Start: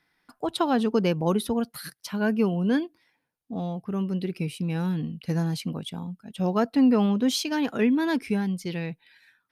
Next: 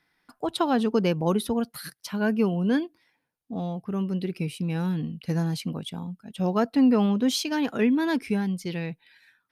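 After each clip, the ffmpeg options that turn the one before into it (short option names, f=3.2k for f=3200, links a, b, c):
-af anull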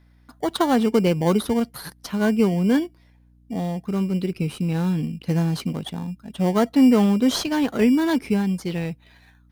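-filter_complex "[0:a]asplit=2[a][b];[b]acrusher=samples=17:mix=1:aa=0.000001,volume=-7dB[c];[a][c]amix=inputs=2:normalize=0,aeval=exprs='val(0)+0.00178*(sin(2*PI*60*n/s)+sin(2*PI*2*60*n/s)/2+sin(2*PI*3*60*n/s)/3+sin(2*PI*4*60*n/s)/4+sin(2*PI*5*60*n/s)/5)':c=same,volume=1.5dB"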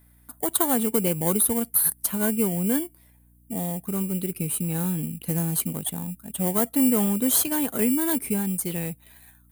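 -filter_complex "[0:a]asplit=2[a][b];[b]acompressor=threshold=-26dB:ratio=6,volume=-1dB[c];[a][c]amix=inputs=2:normalize=0,aexciter=amount=11.7:drive=7.1:freq=7.8k,volume=-8dB"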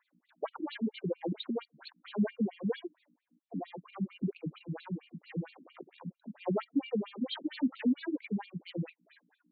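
-af "aphaser=in_gain=1:out_gain=1:delay=4.2:decay=0.45:speed=0.46:type=triangular,afftfilt=real='re*between(b*sr/1024,210*pow(3300/210,0.5+0.5*sin(2*PI*4.4*pts/sr))/1.41,210*pow(3300/210,0.5+0.5*sin(2*PI*4.4*pts/sr))*1.41)':imag='im*between(b*sr/1024,210*pow(3300/210,0.5+0.5*sin(2*PI*4.4*pts/sr))/1.41,210*pow(3300/210,0.5+0.5*sin(2*PI*4.4*pts/sr))*1.41)':win_size=1024:overlap=0.75,volume=-2dB"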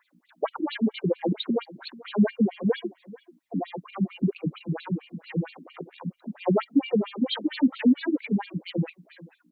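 -filter_complex "[0:a]asplit=2[a][b];[b]adelay=437.3,volume=-20dB,highshelf=f=4k:g=-9.84[c];[a][c]amix=inputs=2:normalize=0,volume=9dB"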